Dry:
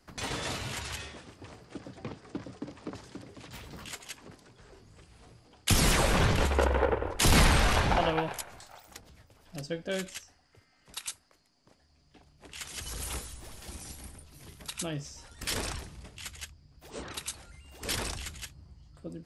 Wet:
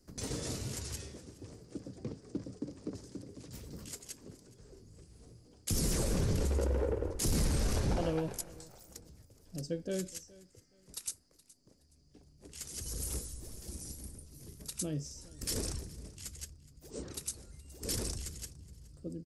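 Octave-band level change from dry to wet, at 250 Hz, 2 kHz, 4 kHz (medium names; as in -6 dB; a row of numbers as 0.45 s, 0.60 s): -3.5 dB, -17.0 dB, -10.0 dB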